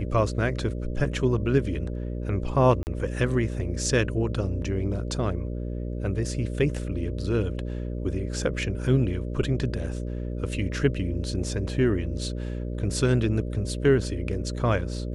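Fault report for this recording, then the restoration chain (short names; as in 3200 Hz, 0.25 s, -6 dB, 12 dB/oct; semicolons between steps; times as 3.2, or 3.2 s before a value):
buzz 60 Hz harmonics 10 -31 dBFS
2.83–2.87 gap 39 ms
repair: de-hum 60 Hz, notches 10; interpolate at 2.83, 39 ms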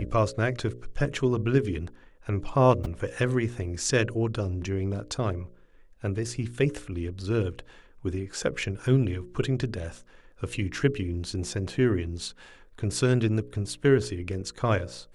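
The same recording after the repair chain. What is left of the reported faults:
none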